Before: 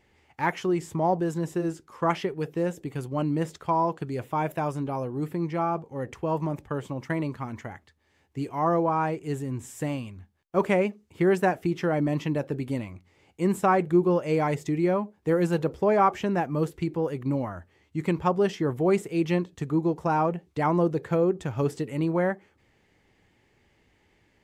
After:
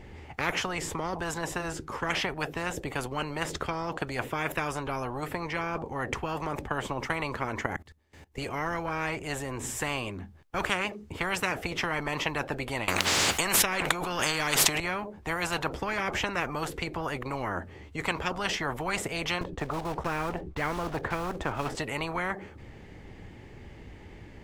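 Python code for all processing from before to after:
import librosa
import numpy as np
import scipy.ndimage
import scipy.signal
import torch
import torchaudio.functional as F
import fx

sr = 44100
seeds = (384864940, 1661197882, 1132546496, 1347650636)

y = fx.chain(x, sr, fx.high_shelf(hz=5800.0, db=11.0),
    fx.level_steps(step_db=22), at=(7.66, 8.38))
y = fx.chain(y, sr, fx.highpass(hz=410.0, slope=6),
    fx.env_flatten(amount_pct=100), at=(12.88, 14.8))
y = fx.chain(y, sr, fx.block_float(bits=5),
    fx.tilt_eq(slope=-4.0), at=(19.41, 21.75))
y = fx.tilt_eq(y, sr, slope=-2.0)
y = fx.spectral_comp(y, sr, ratio=10.0)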